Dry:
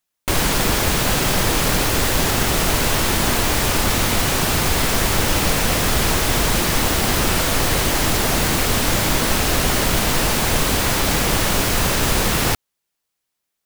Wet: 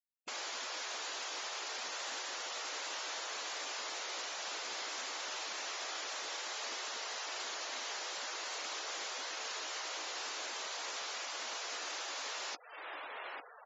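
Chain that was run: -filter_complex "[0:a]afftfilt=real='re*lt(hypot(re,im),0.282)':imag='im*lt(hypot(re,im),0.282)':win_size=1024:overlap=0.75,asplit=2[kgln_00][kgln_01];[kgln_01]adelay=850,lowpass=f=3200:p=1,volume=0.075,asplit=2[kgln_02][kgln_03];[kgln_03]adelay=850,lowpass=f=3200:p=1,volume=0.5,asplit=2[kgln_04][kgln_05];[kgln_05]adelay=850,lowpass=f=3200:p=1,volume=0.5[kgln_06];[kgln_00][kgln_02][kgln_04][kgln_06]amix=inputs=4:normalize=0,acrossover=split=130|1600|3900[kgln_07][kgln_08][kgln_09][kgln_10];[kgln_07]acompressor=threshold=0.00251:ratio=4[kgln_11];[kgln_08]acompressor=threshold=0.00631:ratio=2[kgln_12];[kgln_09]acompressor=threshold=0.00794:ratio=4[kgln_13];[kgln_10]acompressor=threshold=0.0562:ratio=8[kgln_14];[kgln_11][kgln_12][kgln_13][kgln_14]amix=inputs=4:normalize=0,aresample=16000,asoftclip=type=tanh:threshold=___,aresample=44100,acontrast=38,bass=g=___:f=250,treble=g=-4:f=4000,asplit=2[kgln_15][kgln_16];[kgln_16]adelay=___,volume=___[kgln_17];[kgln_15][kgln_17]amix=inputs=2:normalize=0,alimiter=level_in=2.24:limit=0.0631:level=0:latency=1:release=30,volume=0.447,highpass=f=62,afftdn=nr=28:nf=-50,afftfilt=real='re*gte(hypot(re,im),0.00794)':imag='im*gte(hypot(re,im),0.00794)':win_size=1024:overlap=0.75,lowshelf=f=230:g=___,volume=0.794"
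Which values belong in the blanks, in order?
0.0316, -13, 16, 0.282, -8.5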